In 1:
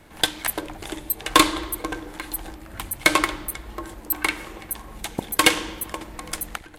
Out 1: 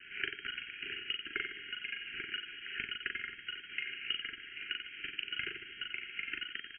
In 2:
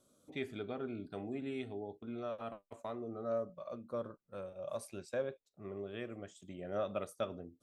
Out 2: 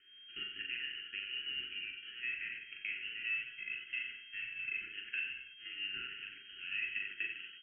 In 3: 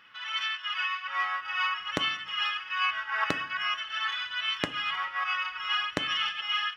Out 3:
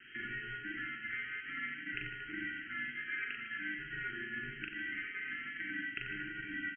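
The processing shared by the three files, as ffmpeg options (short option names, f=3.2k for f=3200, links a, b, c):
-filter_complex "[0:a]highpass=250,lowshelf=f=340:g=-9.5,bandreject=f=60:t=h:w=6,bandreject=f=120:t=h:w=6,bandreject=f=180:t=h:w=6,bandreject=f=240:t=h:w=6,bandreject=f=300:t=h:w=6,bandreject=f=360:t=h:w=6,bandreject=f=420:t=h:w=6,bandreject=f=480:t=h:w=6,bandreject=f=540:t=h:w=6,acompressor=threshold=-42dB:ratio=8,aeval=exprs='val(0)+0.00316*sin(2*PI*2100*n/s)':c=same,acrusher=samples=7:mix=1:aa=0.000001,aeval=exprs='sgn(val(0))*max(abs(val(0))-0.00211,0)':c=same,asplit=2[a][b];[b]aecho=0:1:40|90|152.5|230.6|328.3:0.631|0.398|0.251|0.158|0.1[c];[a][c]amix=inputs=2:normalize=0,lowpass=f=2.7k:t=q:w=0.5098,lowpass=f=2.7k:t=q:w=0.6013,lowpass=f=2.7k:t=q:w=0.9,lowpass=f=2.7k:t=q:w=2.563,afreqshift=-3200,asuperstop=centerf=770:order=20:qfactor=0.79,volume=8dB"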